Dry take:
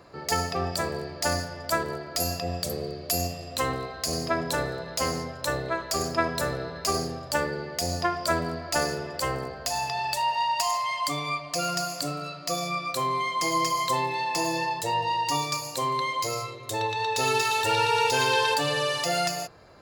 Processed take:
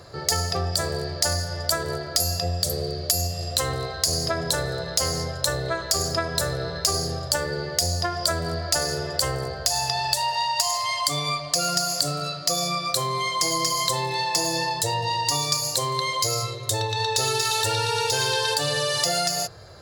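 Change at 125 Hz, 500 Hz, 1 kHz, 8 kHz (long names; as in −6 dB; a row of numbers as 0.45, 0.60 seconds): +6.0, +1.5, −1.0, +8.0 decibels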